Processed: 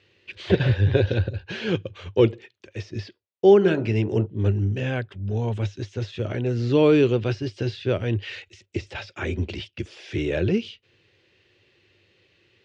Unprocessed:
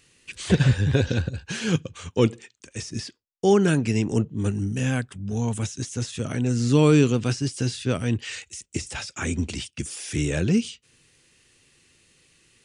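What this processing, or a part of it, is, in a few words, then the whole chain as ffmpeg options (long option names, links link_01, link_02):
guitar cabinet: -filter_complex "[0:a]asplit=3[link_01][link_02][link_03];[link_01]afade=type=out:start_time=3.6:duration=0.02[link_04];[link_02]bandreject=frequency=48.92:width_type=h:width=4,bandreject=frequency=97.84:width_type=h:width=4,bandreject=frequency=146.76:width_type=h:width=4,bandreject=frequency=195.68:width_type=h:width=4,bandreject=frequency=244.6:width_type=h:width=4,bandreject=frequency=293.52:width_type=h:width=4,bandreject=frequency=342.44:width_type=h:width=4,bandreject=frequency=391.36:width_type=h:width=4,bandreject=frequency=440.28:width_type=h:width=4,bandreject=frequency=489.2:width_type=h:width=4,bandreject=frequency=538.12:width_type=h:width=4,bandreject=frequency=587.04:width_type=h:width=4,bandreject=frequency=635.96:width_type=h:width=4,bandreject=frequency=684.88:width_type=h:width=4,bandreject=frequency=733.8:width_type=h:width=4,bandreject=frequency=782.72:width_type=h:width=4,bandreject=frequency=831.64:width_type=h:width=4,bandreject=frequency=880.56:width_type=h:width=4,bandreject=frequency=929.48:width_type=h:width=4,bandreject=frequency=978.4:width_type=h:width=4,bandreject=frequency=1027.32:width_type=h:width=4,bandreject=frequency=1076.24:width_type=h:width=4,bandreject=frequency=1125.16:width_type=h:width=4,bandreject=frequency=1174.08:width_type=h:width=4,bandreject=frequency=1223:width_type=h:width=4,bandreject=frequency=1271.92:width_type=h:width=4,bandreject=frequency=1320.84:width_type=h:width=4,bandreject=frequency=1369.76:width_type=h:width=4,bandreject=frequency=1418.68:width_type=h:width=4,bandreject=frequency=1467.6:width_type=h:width=4,afade=type=in:start_time=3.6:duration=0.02,afade=type=out:start_time=4.25:duration=0.02[link_05];[link_03]afade=type=in:start_time=4.25:duration=0.02[link_06];[link_04][link_05][link_06]amix=inputs=3:normalize=0,highpass=80,equalizer=frequency=100:width_type=q:width=4:gain=8,equalizer=frequency=150:width_type=q:width=4:gain=-8,equalizer=frequency=250:width_type=q:width=4:gain=-7,equalizer=frequency=370:width_type=q:width=4:gain=7,equalizer=frequency=580:width_type=q:width=4:gain=6,equalizer=frequency=1200:width_type=q:width=4:gain=-4,lowpass=frequency=4000:width=0.5412,lowpass=frequency=4000:width=1.3066"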